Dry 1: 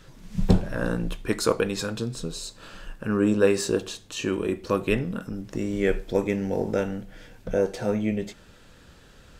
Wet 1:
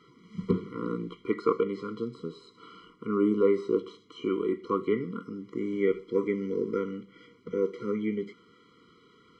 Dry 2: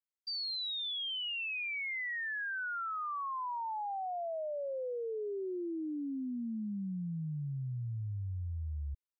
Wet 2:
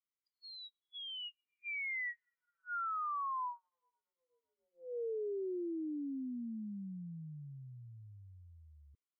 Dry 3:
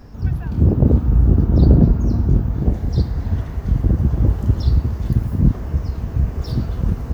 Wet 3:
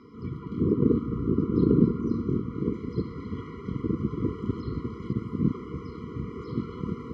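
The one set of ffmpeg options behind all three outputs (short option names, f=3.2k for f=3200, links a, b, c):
-filter_complex "[0:a]acrossover=split=2500[a][b];[b]acompressor=threshold=-47dB:ratio=4:attack=1:release=60[c];[a][c]amix=inputs=2:normalize=0,highpass=260,lowpass=3.3k,afftfilt=real='re*eq(mod(floor(b*sr/1024/480),2),0)':imag='im*eq(mod(floor(b*sr/1024/480),2),0)':win_size=1024:overlap=0.75"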